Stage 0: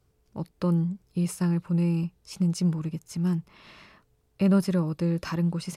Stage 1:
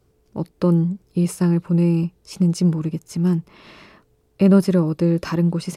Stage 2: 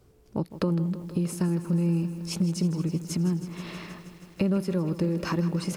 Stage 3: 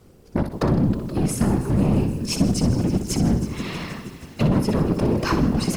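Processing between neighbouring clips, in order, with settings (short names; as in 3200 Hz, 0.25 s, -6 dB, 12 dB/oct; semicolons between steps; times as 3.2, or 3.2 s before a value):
bell 360 Hz +6.5 dB 1.6 oct; gain +4.5 dB
compressor 4:1, threshold -28 dBFS, peak gain reduction 15.5 dB; lo-fi delay 0.159 s, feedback 80%, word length 9-bit, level -13.5 dB; gain +2.5 dB
overloaded stage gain 24.5 dB; whisperiser; flutter echo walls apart 10.6 m, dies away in 0.4 s; gain +8 dB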